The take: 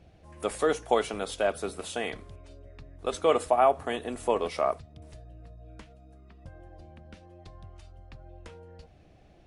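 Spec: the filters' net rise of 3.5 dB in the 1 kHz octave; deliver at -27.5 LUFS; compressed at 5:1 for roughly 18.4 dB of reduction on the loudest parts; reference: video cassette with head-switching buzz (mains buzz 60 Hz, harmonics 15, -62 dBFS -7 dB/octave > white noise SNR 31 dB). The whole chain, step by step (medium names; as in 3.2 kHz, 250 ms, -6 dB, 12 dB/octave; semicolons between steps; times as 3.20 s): peaking EQ 1 kHz +5 dB; compression 5:1, threshold -36 dBFS; mains buzz 60 Hz, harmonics 15, -62 dBFS -7 dB/octave; white noise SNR 31 dB; trim +15.5 dB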